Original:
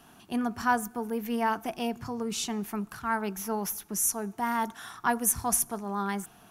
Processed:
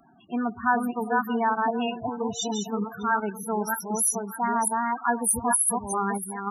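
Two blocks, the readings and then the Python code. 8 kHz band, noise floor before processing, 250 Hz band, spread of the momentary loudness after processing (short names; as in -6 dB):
+3.5 dB, -56 dBFS, +3.0 dB, 8 LU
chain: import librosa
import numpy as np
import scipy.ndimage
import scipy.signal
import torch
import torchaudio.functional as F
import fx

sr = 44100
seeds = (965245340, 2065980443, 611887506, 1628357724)

p1 = fx.reverse_delay(x, sr, ms=312, wet_db=-2.5)
p2 = fx.level_steps(p1, sr, step_db=16)
p3 = p1 + (p2 * 10.0 ** (1.0 / 20.0))
p4 = fx.echo_thinned(p3, sr, ms=617, feedback_pct=50, hz=230.0, wet_db=-14.0)
p5 = fx.spec_topn(p4, sr, count=16)
y = fx.tilt_eq(p5, sr, slope=1.5)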